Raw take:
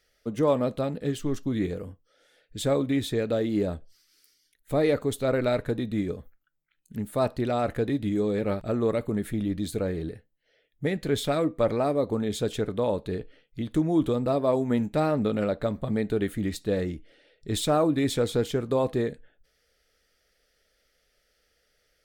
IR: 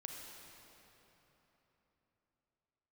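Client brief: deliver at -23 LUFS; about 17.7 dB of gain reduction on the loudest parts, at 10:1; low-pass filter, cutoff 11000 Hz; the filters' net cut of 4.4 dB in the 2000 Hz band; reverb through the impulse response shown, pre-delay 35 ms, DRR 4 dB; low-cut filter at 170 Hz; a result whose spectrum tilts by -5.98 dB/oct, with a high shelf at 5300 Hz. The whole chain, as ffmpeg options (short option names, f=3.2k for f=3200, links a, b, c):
-filter_complex "[0:a]highpass=170,lowpass=11k,equalizer=f=2k:t=o:g=-5,highshelf=f=5.3k:g=-4,acompressor=threshold=-38dB:ratio=10,asplit=2[a][b];[1:a]atrim=start_sample=2205,adelay=35[c];[b][c]afir=irnorm=-1:irlink=0,volume=-1dB[d];[a][d]amix=inputs=2:normalize=0,volume=18.5dB"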